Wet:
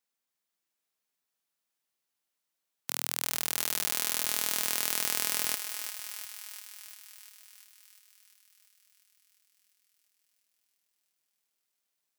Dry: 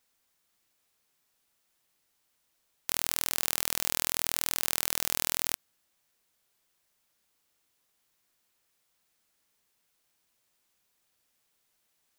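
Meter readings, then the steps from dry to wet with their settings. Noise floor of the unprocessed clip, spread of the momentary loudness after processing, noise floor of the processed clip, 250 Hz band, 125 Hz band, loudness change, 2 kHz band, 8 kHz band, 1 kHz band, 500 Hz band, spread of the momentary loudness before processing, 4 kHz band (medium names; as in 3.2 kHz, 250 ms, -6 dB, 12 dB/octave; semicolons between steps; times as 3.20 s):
-75 dBFS, 17 LU, -85 dBFS, -1.5 dB, -5.5 dB, -0.5 dB, +0.5 dB, +0.5 dB, -0.5 dB, -0.5 dB, 5 LU, +0.5 dB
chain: high-pass 130 Hz 24 dB/octave; thinning echo 348 ms, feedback 77%, high-pass 580 Hz, level -6.5 dB; upward expansion 1.5:1, over -51 dBFS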